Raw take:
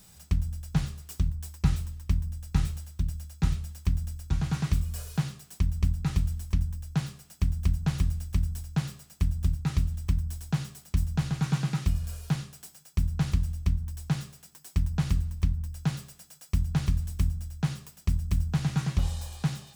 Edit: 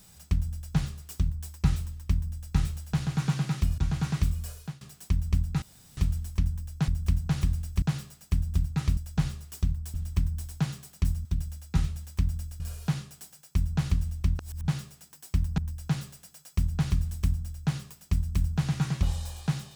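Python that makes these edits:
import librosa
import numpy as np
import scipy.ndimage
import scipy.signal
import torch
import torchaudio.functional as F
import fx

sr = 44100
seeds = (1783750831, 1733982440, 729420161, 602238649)

y = fx.edit(x, sr, fx.duplicate(start_s=0.54, length_s=0.97, to_s=9.86),
    fx.swap(start_s=2.93, length_s=1.35, other_s=11.17, other_length_s=0.85),
    fx.fade_out_to(start_s=4.88, length_s=0.43, floor_db=-23.5),
    fx.insert_room_tone(at_s=6.12, length_s=0.35),
    fx.cut(start_s=7.03, length_s=0.42),
    fx.cut(start_s=8.39, length_s=0.32),
    fx.reverse_span(start_s=13.81, length_s=0.29),
    fx.cut(start_s=15.0, length_s=0.54), tone=tone)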